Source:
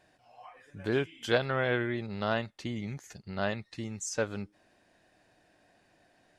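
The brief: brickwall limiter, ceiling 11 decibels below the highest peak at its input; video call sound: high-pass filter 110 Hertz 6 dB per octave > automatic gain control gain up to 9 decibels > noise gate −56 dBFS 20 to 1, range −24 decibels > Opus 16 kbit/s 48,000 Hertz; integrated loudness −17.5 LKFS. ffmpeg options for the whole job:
ffmpeg -i in.wav -af "alimiter=limit=-22.5dB:level=0:latency=1,highpass=frequency=110:poles=1,dynaudnorm=maxgain=9dB,agate=range=-24dB:threshold=-56dB:ratio=20,volume=20dB" -ar 48000 -c:a libopus -b:a 16k out.opus

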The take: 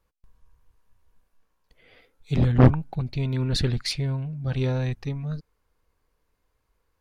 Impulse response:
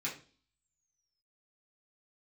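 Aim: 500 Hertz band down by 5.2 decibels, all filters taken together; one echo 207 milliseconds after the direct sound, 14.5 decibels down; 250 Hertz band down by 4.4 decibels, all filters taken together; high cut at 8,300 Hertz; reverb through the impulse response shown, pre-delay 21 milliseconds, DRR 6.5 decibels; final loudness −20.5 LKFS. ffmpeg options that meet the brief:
-filter_complex "[0:a]lowpass=8300,equalizer=frequency=250:width_type=o:gain=-5,equalizer=frequency=500:width_type=o:gain=-5,aecho=1:1:207:0.188,asplit=2[link_01][link_02];[1:a]atrim=start_sample=2205,adelay=21[link_03];[link_02][link_03]afir=irnorm=-1:irlink=0,volume=-9.5dB[link_04];[link_01][link_04]amix=inputs=2:normalize=0,volume=5dB"

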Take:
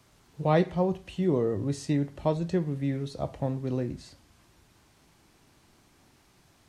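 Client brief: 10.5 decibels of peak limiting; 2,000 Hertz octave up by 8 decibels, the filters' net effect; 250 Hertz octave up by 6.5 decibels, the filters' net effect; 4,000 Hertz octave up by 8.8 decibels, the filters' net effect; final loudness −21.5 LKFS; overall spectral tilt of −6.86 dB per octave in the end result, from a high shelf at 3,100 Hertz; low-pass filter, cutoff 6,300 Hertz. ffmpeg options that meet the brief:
ffmpeg -i in.wav -af "lowpass=6300,equalizer=frequency=250:width_type=o:gain=9,equalizer=frequency=2000:width_type=o:gain=5.5,highshelf=frequency=3100:gain=8.5,equalizer=frequency=4000:width_type=o:gain=3.5,volume=6.5dB,alimiter=limit=-11dB:level=0:latency=1" out.wav

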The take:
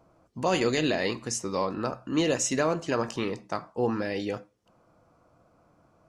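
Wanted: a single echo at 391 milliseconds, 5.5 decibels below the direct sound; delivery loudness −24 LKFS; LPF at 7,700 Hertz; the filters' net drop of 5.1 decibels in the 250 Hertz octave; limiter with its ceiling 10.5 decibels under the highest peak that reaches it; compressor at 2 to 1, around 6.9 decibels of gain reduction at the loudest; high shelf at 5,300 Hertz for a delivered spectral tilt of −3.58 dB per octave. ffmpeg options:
ffmpeg -i in.wav -af "lowpass=7700,equalizer=frequency=250:width_type=o:gain=-7,highshelf=frequency=5300:gain=7.5,acompressor=threshold=-35dB:ratio=2,alimiter=level_in=4.5dB:limit=-24dB:level=0:latency=1,volume=-4.5dB,aecho=1:1:391:0.531,volume=15dB" out.wav

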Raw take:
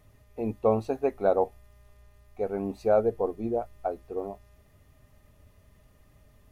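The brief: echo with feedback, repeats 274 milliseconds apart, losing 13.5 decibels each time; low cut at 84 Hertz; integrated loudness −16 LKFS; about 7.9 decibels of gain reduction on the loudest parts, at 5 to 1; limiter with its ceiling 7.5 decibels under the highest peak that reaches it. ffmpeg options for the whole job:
ffmpeg -i in.wav -af "highpass=84,acompressor=threshold=-26dB:ratio=5,alimiter=limit=-24dB:level=0:latency=1,aecho=1:1:274|548:0.211|0.0444,volume=20.5dB" out.wav

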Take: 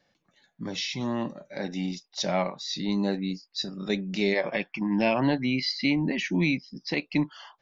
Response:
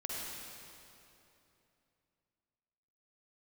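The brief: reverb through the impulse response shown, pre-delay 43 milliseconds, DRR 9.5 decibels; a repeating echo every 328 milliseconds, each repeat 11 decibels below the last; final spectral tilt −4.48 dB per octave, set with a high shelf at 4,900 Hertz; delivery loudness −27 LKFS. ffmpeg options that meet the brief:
-filter_complex "[0:a]highshelf=frequency=4900:gain=-6,aecho=1:1:328|656|984:0.282|0.0789|0.0221,asplit=2[link_01][link_02];[1:a]atrim=start_sample=2205,adelay=43[link_03];[link_02][link_03]afir=irnorm=-1:irlink=0,volume=-11.5dB[link_04];[link_01][link_04]amix=inputs=2:normalize=0,volume=1dB"

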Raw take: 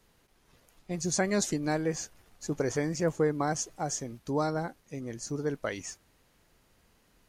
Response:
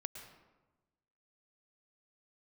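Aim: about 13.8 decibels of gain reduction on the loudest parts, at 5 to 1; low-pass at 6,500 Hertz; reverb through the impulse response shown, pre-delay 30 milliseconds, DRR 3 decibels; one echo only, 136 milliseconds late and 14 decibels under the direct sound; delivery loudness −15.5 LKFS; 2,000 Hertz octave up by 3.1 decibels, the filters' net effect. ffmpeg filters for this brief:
-filter_complex "[0:a]lowpass=6500,equalizer=frequency=2000:width_type=o:gain=4,acompressor=threshold=-38dB:ratio=5,aecho=1:1:136:0.2,asplit=2[link_01][link_02];[1:a]atrim=start_sample=2205,adelay=30[link_03];[link_02][link_03]afir=irnorm=-1:irlink=0,volume=-0.5dB[link_04];[link_01][link_04]amix=inputs=2:normalize=0,volume=25dB"

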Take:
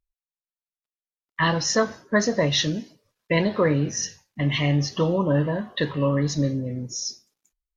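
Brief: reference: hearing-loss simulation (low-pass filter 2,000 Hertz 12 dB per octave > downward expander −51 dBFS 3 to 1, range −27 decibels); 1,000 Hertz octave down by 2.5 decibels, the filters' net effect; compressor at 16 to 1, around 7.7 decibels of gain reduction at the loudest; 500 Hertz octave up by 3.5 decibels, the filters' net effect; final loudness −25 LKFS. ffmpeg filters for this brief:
ffmpeg -i in.wav -af "equalizer=frequency=500:width_type=o:gain=5,equalizer=frequency=1000:width_type=o:gain=-4,acompressor=threshold=-21dB:ratio=16,lowpass=2000,agate=range=-27dB:threshold=-51dB:ratio=3,volume=3dB" out.wav

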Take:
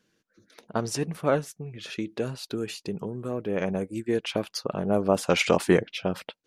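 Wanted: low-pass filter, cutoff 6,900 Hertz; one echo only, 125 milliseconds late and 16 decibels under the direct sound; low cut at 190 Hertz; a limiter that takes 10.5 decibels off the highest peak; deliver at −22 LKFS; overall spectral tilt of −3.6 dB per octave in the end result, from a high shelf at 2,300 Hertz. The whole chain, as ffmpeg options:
ffmpeg -i in.wav -af "highpass=190,lowpass=6900,highshelf=frequency=2300:gain=6,alimiter=limit=-16dB:level=0:latency=1,aecho=1:1:125:0.158,volume=8.5dB" out.wav

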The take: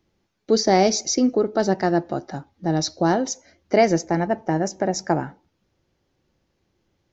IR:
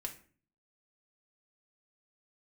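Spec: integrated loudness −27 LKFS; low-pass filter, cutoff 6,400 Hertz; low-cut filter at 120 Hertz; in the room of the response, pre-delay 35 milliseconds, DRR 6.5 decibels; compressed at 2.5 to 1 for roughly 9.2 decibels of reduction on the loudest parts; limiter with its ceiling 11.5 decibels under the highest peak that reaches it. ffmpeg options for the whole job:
-filter_complex "[0:a]highpass=120,lowpass=6400,acompressor=threshold=-26dB:ratio=2.5,alimiter=limit=-22.5dB:level=0:latency=1,asplit=2[link_01][link_02];[1:a]atrim=start_sample=2205,adelay=35[link_03];[link_02][link_03]afir=irnorm=-1:irlink=0,volume=-5dB[link_04];[link_01][link_04]amix=inputs=2:normalize=0,volume=6dB"

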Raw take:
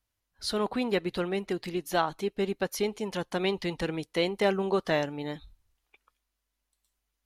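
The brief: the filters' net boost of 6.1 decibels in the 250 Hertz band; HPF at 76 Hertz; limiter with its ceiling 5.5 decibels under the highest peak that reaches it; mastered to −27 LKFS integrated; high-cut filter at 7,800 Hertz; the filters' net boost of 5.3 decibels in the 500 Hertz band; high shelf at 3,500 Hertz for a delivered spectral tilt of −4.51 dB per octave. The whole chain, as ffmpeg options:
ffmpeg -i in.wav -af "highpass=76,lowpass=7800,equalizer=frequency=250:width_type=o:gain=7.5,equalizer=frequency=500:width_type=o:gain=4,highshelf=frequency=3500:gain=7,volume=-0.5dB,alimiter=limit=-14.5dB:level=0:latency=1" out.wav

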